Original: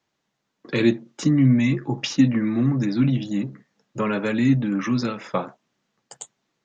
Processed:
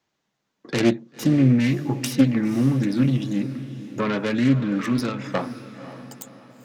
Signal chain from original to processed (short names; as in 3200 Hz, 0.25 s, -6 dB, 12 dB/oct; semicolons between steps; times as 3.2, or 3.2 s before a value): self-modulated delay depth 0.31 ms; diffused feedback echo 0.531 s, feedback 43%, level -13 dB